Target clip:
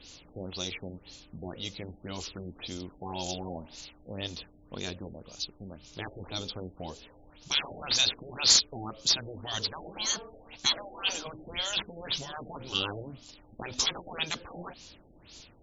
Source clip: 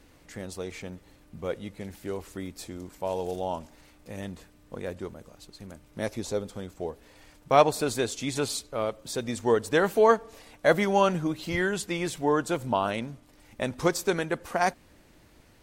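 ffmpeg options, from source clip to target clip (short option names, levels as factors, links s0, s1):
-af "afftfilt=real='re*lt(hypot(re,im),0.112)':imag='im*lt(hypot(re,im),0.112)':win_size=1024:overlap=0.75,asoftclip=type=tanh:threshold=0.0944,aexciter=amount=10.9:drive=1.2:freq=2800,asoftclip=type=hard:threshold=0.237,afftfilt=real='re*lt(b*sr/1024,810*pow(7600/810,0.5+0.5*sin(2*PI*1.9*pts/sr)))':imag='im*lt(b*sr/1024,810*pow(7600/810,0.5+0.5*sin(2*PI*1.9*pts/sr)))':win_size=1024:overlap=0.75"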